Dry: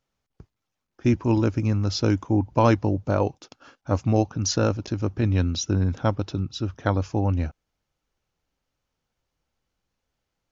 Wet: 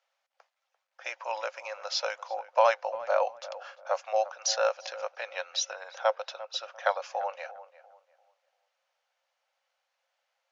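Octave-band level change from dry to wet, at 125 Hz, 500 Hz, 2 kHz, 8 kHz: below −40 dB, −2.5 dB, +1.0 dB, can't be measured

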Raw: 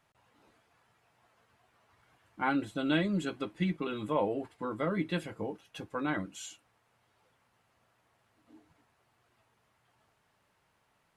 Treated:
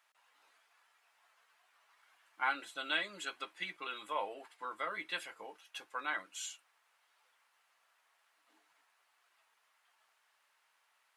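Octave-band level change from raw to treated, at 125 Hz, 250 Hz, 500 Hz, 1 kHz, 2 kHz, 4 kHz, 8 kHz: below −30 dB, −23.0 dB, −12.0 dB, −2.5 dB, +0.5 dB, +1.5 dB, +1.5 dB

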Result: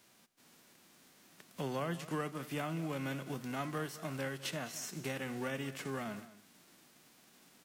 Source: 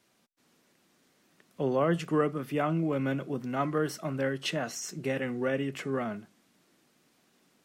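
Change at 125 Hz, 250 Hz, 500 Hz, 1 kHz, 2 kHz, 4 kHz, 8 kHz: −7.5, −9.5, −11.0, −8.0, −5.5, −5.0, −4.0 decibels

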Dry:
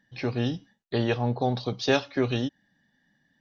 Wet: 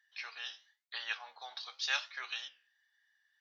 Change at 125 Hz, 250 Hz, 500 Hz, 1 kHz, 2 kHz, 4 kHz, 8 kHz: below −40 dB, below −40 dB, −32.0 dB, −14.5 dB, −4.0 dB, −3.5 dB, can't be measured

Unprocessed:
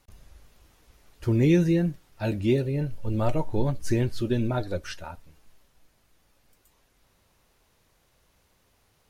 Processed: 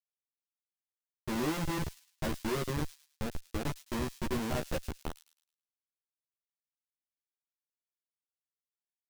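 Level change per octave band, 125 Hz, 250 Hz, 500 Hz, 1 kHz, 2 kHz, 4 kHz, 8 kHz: −13.5, −11.0, −10.0, −2.5, −3.0, −1.5, +1.0 decibels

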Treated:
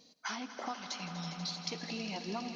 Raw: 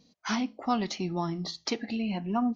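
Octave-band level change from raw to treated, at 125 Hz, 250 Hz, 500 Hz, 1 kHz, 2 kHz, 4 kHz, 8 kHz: −8.5 dB, −12.5 dB, −9.0 dB, −8.5 dB, −3.5 dB, −2.5 dB, can't be measured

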